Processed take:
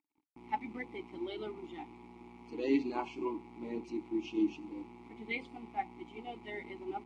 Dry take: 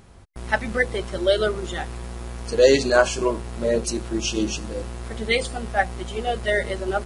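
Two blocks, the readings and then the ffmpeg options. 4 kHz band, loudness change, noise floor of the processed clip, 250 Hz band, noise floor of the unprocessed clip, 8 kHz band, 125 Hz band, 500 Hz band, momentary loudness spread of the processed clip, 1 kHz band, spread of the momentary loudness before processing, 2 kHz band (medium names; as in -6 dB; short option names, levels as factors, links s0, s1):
-23.0 dB, -16.0 dB, -65 dBFS, -8.0 dB, -43 dBFS, under -35 dB, -25.0 dB, -20.0 dB, 16 LU, -12.5 dB, 15 LU, -20.0 dB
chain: -filter_complex "[0:a]aeval=exprs='sgn(val(0))*max(abs(val(0))-0.00794,0)':c=same,acrossover=split=6000[s0][s1];[s1]acompressor=threshold=0.00562:ratio=4:attack=1:release=60[s2];[s0][s2]amix=inputs=2:normalize=0,asplit=3[s3][s4][s5];[s3]bandpass=f=300:t=q:w=8,volume=1[s6];[s4]bandpass=f=870:t=q:w=8,volume=0.501[s7];[s5]bandpass=f=2240:t=q:w=8,volume=0.355[s8];[s6][s7][s8]amix=inputs=3:normalize=0"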